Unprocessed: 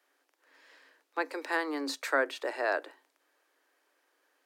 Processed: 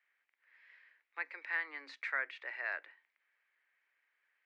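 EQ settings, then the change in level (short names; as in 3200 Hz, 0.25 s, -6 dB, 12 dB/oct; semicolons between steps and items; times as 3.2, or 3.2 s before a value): band-pass 2100 Hz, Q 4.4; air absorption 87 m; +3.5 dB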